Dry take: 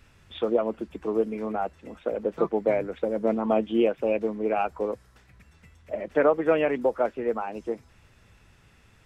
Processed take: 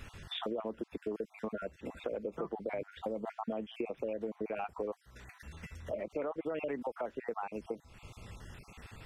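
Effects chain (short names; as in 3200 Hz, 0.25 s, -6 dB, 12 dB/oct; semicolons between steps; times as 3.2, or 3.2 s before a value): random spectral dropouts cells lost 34%; limiter -19.5 dBFS, peak gain reduction 10 dB; compressor 3:1, threshold -48 dBFS, peak gain reduction 17.5 dB; gain +8 dB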